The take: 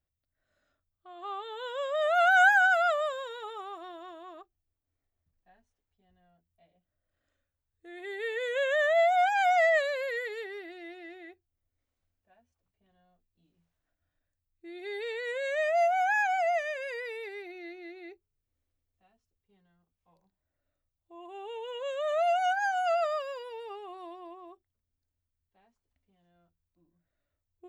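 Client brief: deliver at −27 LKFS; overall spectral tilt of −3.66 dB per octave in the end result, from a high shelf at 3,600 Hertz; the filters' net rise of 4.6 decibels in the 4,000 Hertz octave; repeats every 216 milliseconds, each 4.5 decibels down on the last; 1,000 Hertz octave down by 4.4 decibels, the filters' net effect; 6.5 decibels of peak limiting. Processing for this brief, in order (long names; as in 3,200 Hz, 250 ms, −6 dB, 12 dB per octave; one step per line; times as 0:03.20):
parametric band 1,000 Hz −8.5 dB
high-shelf EQ 3,600 Hz +6 dB
parametric band 4,000 Hz +3 dB
brickwall limiter −22 dBFS
repeating echo 216 ms, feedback 60%, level −4.5 dB
level +3 dB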